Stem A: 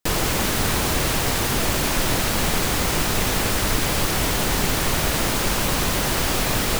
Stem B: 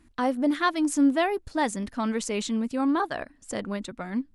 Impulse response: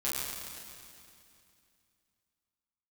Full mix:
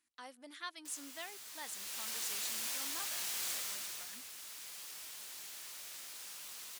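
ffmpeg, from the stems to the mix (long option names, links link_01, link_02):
-filter_complex "[0:a]adelay=800,volume=-8.5dB,afade=type=in:start_time=1.53:duration=0.68:silence=0.298538,afade=type=out:start_time=3.46:duration=0.62:silence=0.266073,asplit=2[link_01][link_02];[link_02]volume=-11dB[link_03];[1:a]volume=-5.5dB,asplit=2[link_04][link_05];[link_05]apad=whole_len=335103[link_06];[link_01][link_06]sidechaincompress=threshold=-33dB:ratio=3:attack=16:release=1140[link_07];[2:a]atrim=start_sample=2205[link_08];[link_03][link_08]afir=irnorm=-1:irlink=0[link_09];[link_07][link_04][link_09]amix=inputs=3:normalize=0,aderivative,highshelf=frequency=9900:gain=-11"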